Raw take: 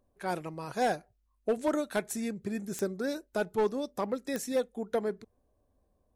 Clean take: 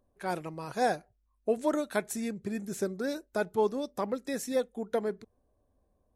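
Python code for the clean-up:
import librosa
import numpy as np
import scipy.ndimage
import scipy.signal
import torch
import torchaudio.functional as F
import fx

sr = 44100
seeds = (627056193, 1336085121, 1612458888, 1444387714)

y = fx.fix_declip(x, sr, threshold_db=-21.5)
y = fx.fix_declick_ar(y, sr, threshold=10.0)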